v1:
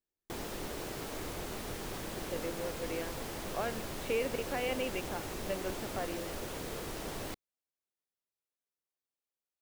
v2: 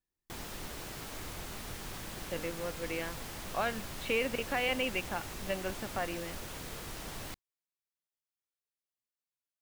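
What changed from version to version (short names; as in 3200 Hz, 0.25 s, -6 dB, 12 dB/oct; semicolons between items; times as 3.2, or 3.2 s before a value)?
speech +7.5 dB; master: add bell 420 Hz -8 dB 1.7 oct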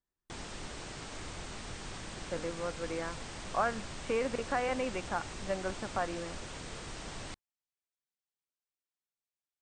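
speech: add synth low-pass 1300 Hz, resonance Q 1.7; background: add brick-wall FIR low-pass 9100 Hz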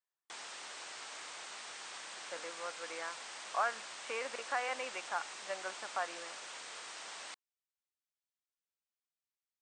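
master: add HPF 810 Hz 12 dB/oct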